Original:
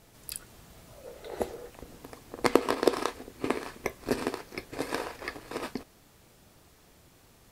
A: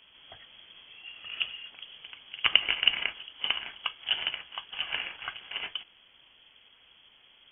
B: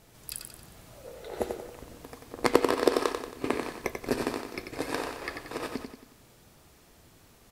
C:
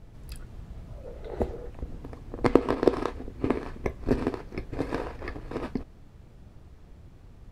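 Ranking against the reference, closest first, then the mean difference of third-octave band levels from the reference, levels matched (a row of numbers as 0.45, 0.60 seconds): B, C, A; 2.5, 7.5, 16.0 decibels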